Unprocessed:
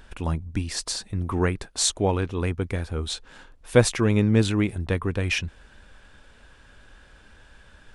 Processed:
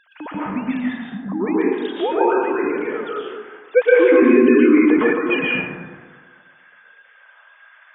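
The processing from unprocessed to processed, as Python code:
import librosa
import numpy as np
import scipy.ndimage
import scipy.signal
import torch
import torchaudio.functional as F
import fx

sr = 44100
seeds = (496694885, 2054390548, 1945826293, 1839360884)

y = fx.sine_speech(x, sr)
y = fx.cheby1_lowpass(y, sr, hz=790.0, order=3, at=(0.98, 1.46), fade=0.02)
y = fx.rev_plate(y, sr, seeds[0], rt60_s=1.5, hf_ratio=0.35, predelay_ms=105, drr_db=-7.0)
y = fx.env_flatten(y, sr, amount_pct=50, at=(4.02, 5.13))
y = y * librosa.db_to_amplitude(-1.0)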